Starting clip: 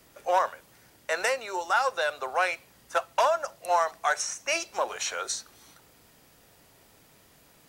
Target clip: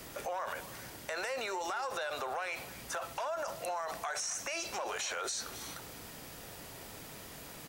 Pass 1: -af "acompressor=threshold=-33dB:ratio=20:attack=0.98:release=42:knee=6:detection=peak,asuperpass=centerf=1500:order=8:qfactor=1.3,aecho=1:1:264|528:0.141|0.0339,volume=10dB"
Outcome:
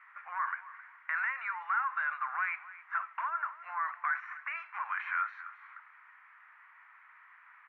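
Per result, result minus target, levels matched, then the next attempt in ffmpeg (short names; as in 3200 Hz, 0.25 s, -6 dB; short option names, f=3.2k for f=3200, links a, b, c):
compressor: peak gain reduction -9 dB; 2000 Hz band +3.5 dB
-af "acompressor=threshold=-42.5dB:ratio=20:attack=0.98:release=42:knee=6:detection=peak,asuperpass=centerf=1500:order=8:qfactor=1.3,aecho=1:1:264|528:0.141|0.0339,volume=10dB"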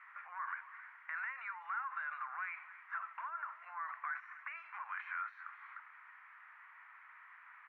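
2000 Hz band +4.0 dB
-af "acompressor=threshold=-42.5dB:ratio=20:attack=0.98:release=42:knee=6:detection=peak,aecho=1:1:264|528:0.141|0.0339,volume=10dB"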